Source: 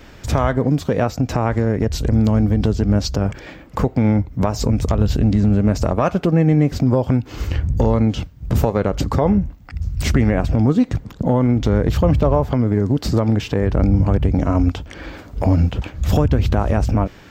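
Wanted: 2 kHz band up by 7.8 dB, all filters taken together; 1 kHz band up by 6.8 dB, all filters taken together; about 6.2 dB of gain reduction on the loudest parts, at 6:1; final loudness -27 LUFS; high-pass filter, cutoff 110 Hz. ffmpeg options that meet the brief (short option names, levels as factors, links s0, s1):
-af "highpass=110,equalizer=f=1000:t=o:g=7,equalizer=f=2000:t=o:g=7.5,acompressor=threshold=0.158:ratio=6,volume=0.596"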